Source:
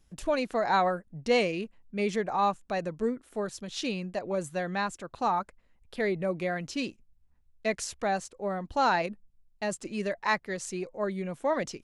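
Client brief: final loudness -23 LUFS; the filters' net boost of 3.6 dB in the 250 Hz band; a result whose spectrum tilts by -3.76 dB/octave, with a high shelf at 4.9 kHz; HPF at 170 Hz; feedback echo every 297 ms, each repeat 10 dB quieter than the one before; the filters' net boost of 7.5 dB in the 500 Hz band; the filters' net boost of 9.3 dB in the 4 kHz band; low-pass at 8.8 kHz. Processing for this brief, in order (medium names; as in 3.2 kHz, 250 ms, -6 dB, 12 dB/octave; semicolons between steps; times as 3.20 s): high-pass 170 Hz; low-pass 8.8 kHz; peaking EQ 250 Hz +4 dB; peaking EQ 500 Hz +8 dB; peaking EQ 4 kHz +8.5 dB; treble shelf 4.9 kHz +5.5 dB; feedback delay 297 ms, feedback 32%, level -10 dB; trim +2 dB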